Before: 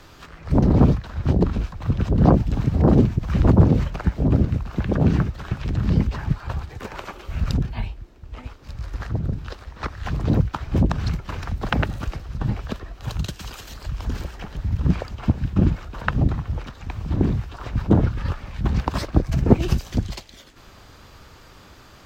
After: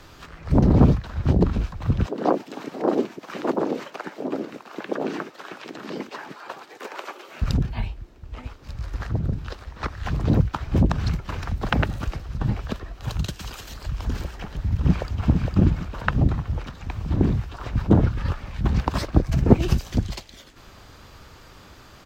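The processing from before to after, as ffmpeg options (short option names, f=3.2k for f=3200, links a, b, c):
-filter_complex "[0:a]asettb=1/sr,asplit=3[a][b][c];[a]atrim=end=2.064[d];[b]atrim=start=2.06:end=7.42,asetpts=PTS-STARTPTS,afade=t=in:d=0.004:c=qsin,afade=t=out:st=5.356:d=0.004:c=qsin,highpass=f=310:w=0.5412,highpass=f=310:w=1.3066[e];[c]atrim=start=7.416[f];[d][e]acrossfade=d=0.004:c1=hsin:c2=qsin[g];[g][f]acrossfade=d=0.004:c1=qsin:c2=hsin,asplit=2[h][i];[i]afade=t=in:st=14.37:d=0.01,afade=t=out:st=15.18:d=0.01,aecho=0:1:460|920|1380|1840:0.595662|0.208482|0.0729686|0.025539[j];[h][j]amix=inputs=2:normalize=0"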